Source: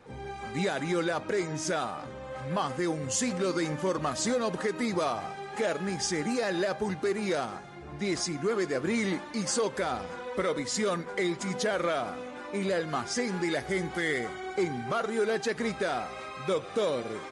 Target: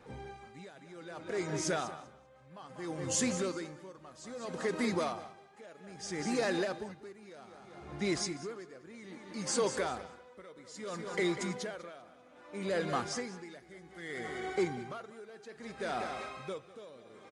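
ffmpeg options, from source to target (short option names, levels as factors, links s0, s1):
-filter_complex "[0:a]asplit=2[s0][s1];[s1]aecho=0:1:195|390|585|780:0.299|0.116|0.0454|0.0177[s2];[s0][s2]amix=inputs=2:normalize=0,aeval=exprs='val(0)*pow(10,-21*(0.5-0.5*cos(2*PI*0.62*n/s))/20)':c=same,volume=0.794"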